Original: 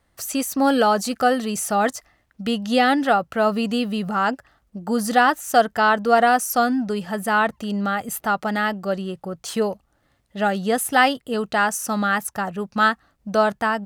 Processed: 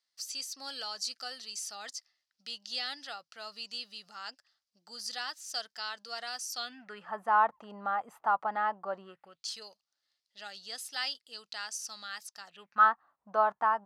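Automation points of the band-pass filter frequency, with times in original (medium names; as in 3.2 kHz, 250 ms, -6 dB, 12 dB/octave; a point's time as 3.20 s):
band-pass filter, Q 3.7
6.51 s 4.9 kHz
7.16 s 970 Hz
9.02 s 970 Hz
9.45 s 4.8 kHz
12.47 s 4.8 kHz
12.87 s 1 kHz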